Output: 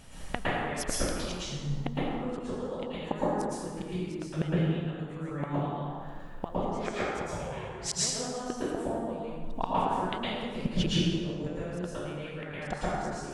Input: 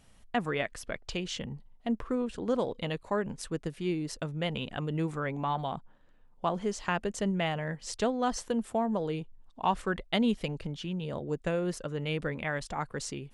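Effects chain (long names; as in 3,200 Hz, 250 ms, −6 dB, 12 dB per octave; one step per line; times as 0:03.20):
gate with flip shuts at −27 dBFS, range −25 dB
0:06.77–0:07.92: ring modulation 690 Hz → 150 Hz
dense smooth reverb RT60 1.7 s, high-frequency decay 0.6×, pre-delay 100 ms, DRR −9 dB
level +9 dB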